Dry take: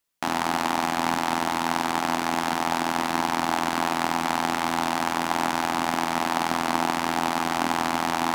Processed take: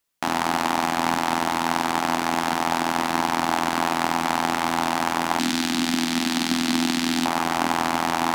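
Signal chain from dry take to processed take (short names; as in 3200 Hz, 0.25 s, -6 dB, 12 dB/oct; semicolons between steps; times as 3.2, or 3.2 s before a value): 5.39–7.26 graphic EQ 125/250/500/1000/4000/8000 Hz -6/+11/-11/-9/+7/+3 dB; gain +2 dB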